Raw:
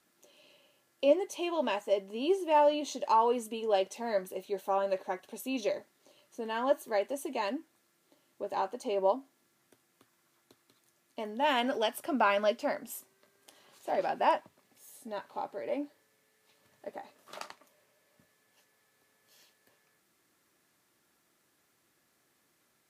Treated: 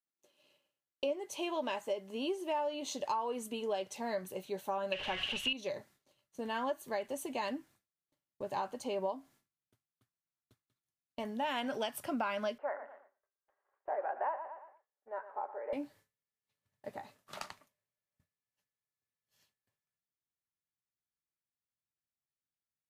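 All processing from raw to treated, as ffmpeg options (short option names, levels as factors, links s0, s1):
-filter_complex "[0:a]asettb=1/sr,asplit=3[s0][s1][s2];[s0]atrim=end=4.924[s3];[s1]atrim=start=4.92:end=5.53,asetpts=PTS-STARTPTS,afade=t=in:d=0.004:c=qsin,afade=t=out:st=0.606:d=0.004:c=qsin,aeval=exprs='val(0)+0.5*0.00841*sgn(val(0))':c=same,lowpass=f=2900:t=q:w=11,aemphasis=mode=production:type=75kf[s4];[s2]atrim=start=5.526[s5];[s3][s4]acrossfade=d=0.004:c1=hsin:c2=qsin[s6];[s6][s5]acrossfade=d=0.004:c1=qsin:c2=hsin,asettb=1/sr,asplit=3[s7][s8][s9];[s7]atrim=end=12.584[s10];[s8]atrim=start=12.58:end=15.73,asetpts=PTS-STARTPTS,afade=t=in:d=0.004:c=qsin,afade=t=out:st=3.146:d=0.004:c=qsin,asuperpass=centerf=850:order=8:qfactor=0.62,aecho=1:1:115|230|345|460:0.224|0.0918|0.0376|0.0154,atrim=end_sample=138915[s11];[s9]atrim=start=15.726[s12];[s10][s11]acrossfade=d=0.004:c1=hsin:c2=qsin[s13];[s13][s12]acrossfade=d=0.004:c1=qsin:c2=hsin,agate=range=0.0224:threshold=0.00224:ratio=3:detection=peak,asubboost=boost=7:cutoff=120,acompressor=threshold=0.0251:ratio=6"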